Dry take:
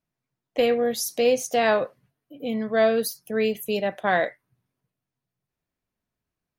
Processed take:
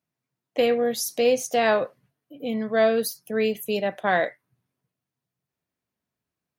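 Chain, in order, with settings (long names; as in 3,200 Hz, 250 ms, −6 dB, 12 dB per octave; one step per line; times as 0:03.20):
high-pass filter 90 Hz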